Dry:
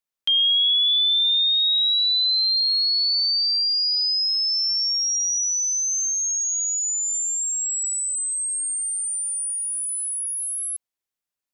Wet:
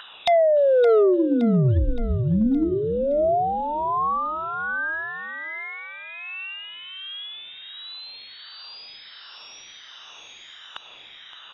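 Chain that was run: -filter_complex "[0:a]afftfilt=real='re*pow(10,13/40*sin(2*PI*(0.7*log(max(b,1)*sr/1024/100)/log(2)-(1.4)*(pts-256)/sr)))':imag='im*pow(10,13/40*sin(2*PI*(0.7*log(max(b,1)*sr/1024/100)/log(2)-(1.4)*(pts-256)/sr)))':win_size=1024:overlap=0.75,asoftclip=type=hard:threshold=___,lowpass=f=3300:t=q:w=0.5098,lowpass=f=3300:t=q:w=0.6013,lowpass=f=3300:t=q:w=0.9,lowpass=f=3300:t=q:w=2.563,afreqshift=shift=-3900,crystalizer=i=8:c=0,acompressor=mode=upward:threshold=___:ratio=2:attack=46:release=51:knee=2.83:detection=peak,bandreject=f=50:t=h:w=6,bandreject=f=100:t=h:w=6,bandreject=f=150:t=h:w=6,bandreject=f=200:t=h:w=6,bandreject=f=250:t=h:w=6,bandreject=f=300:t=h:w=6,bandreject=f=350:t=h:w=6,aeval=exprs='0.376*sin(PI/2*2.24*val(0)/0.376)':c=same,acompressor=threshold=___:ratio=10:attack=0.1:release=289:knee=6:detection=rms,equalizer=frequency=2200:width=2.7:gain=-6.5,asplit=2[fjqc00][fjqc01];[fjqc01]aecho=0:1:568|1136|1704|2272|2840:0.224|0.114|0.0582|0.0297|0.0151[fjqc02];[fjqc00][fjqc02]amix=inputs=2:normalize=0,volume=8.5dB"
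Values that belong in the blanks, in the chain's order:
-11dB, -42dB, -24dB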